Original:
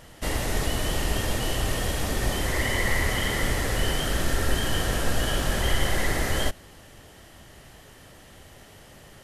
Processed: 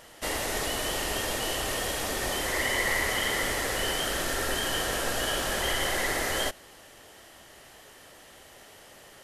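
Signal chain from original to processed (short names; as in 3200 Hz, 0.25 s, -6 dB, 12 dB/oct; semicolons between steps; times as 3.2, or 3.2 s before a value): tone controls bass -13 dB, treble +1 dB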